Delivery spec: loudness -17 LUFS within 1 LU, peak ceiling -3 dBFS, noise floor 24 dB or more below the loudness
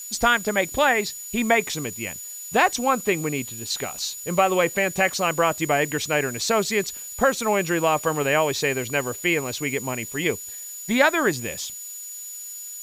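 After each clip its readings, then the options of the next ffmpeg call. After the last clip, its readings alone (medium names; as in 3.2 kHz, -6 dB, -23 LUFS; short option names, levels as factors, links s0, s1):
steady tone 6.9 kHz; tone level -35 dBFS; noise floor -37 dBFS; noise floor target -47 dBFS; loudness -23.0 LUFS; peak level -4.0 dBFS; loudness target -17.0 LUFS
-> -af "bandreject=f=6900:w=30"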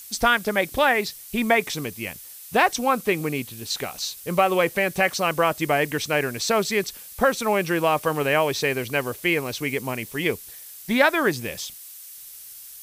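steady tone not found; noise floor -42 dBFS; noise floor target -47 dBFS
-> -af "afftdn=nr=6:nf=-42"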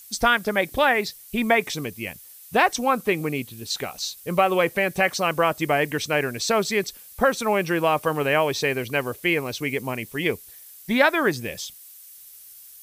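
noise floor -46 dBFS; noise floor target -47 dBFS
-> -af "afftdn=nr=6:nf=-46"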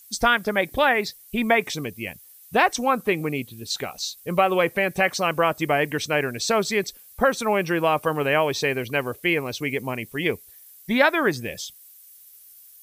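noise floor -49 dBFS; loudness -23.0 LUFS; peak level -4.0 dBFS; loudness target -17.0 LUFS
-> -af "volume=2,alimiter=limit=0.708:level=0:latency=1"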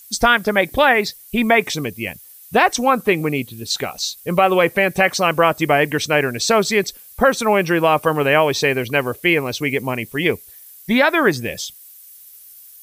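loudness -17.5 LUFS; peak level -3.0 dBFS; noise floor -43 dBFS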